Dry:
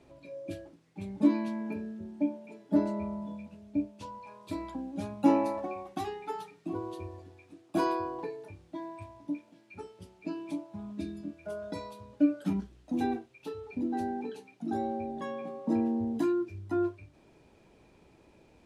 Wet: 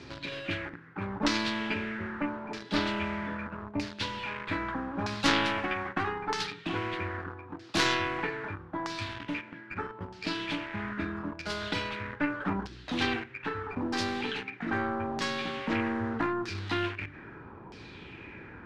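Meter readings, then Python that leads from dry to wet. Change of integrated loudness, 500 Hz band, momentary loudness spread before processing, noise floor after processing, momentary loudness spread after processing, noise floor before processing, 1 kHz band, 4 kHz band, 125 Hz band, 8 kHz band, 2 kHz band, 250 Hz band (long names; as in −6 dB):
+1.0 dB, −0.5 dB, 17 LU, −49 dBFS, 11 LU, −62 dBFS, +4.0 dB, +19.0 dB, +5.0 dB, can't be measured, +17.0 dB, −3.0 dB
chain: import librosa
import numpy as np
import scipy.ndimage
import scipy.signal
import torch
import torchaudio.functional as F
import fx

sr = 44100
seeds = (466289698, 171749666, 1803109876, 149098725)

p1 = fx.tracing_dist(x, sr, depth_ms=0.29)
p2 = fx.low_shelf(p1, sr, hz=63.0, db=-9.0)
p3 = fx.quant_dither(p2, sr, seeds[0], bits=8, dither='none')
p4 = p2 + F.gain(torch.from_numpy(p3), -7.5).numpy()
p5 = fx.filter_lfo_lowpass(p4, sr, shape='saw_down', hz=0.79, low_hz=870.0, high_hz=5200.0, q=2.8)
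p6 = fx.graphic_eq_15(p5, sr, hz=(100, 630, 1600), db=(6, -11, 7))
p7 = fx.spectral_comp(p6, sr, ratio=2.0)
y = F.gain(torch.from_numpy(p7), -1.5).numpy()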